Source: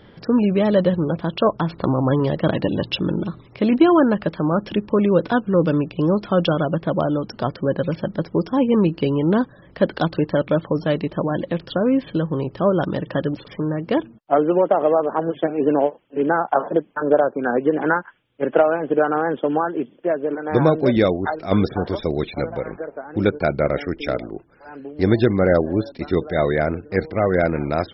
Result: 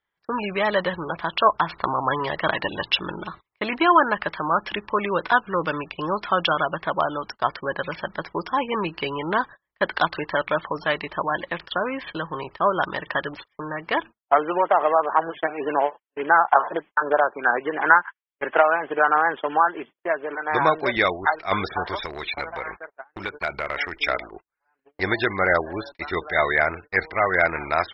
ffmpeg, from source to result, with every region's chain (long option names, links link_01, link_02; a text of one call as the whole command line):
ffmpeg -i in.wav -filter_complex "[0:a]asettb=1/sr,asplit=3[link_01][link_02][link_03];[link_01]atrim=end=22.004[link_04];[link_02]atrim=start=22:end=24.06,asetpts=PTS-STARTPTS,afade=type=in:duration=0.004:curve=qsin,afade=type=out:start_time=2.056:duration=0.004:curve=qsin,highshelf=frequency=4600:gain=9,acompressor=threshold=-20dB:ratio=8:attack=3.2:release=140:knee=1:detection=peak,volume=17.5dB,asoftclip=hard,volume=-17.5dB[link_05];[link_03]atrim=start=24.056[link_06];[link_04][link_05]acrossfade=duration=0.004:curve1=hsin:curve2=qsin[link_07];[link_07][link_06]acrossfade=duration=0.004:curve1=qsin:curve2=hsin,equalizer=frequency=510:width=2.1:gain=-13,agate=range=-35dB:threshold=-34dB:ratio=16:detection=peak,equalizer=frequency=125:width_type=o:width=1:gain=-10,equalizer=frequency=250:width_type=o:width=1:gain=-10,equalizer=frequency=500:width_type=o:width=1:gain=8,equalizer=frequency=1000:width_type=o:width=1:gain=9,equalizer=frequency=2000:width_type=o:width=1:gain=11,equalizer=frequency=4000:width_type=o:width=1:gain=4,volume=-4dB" out.wav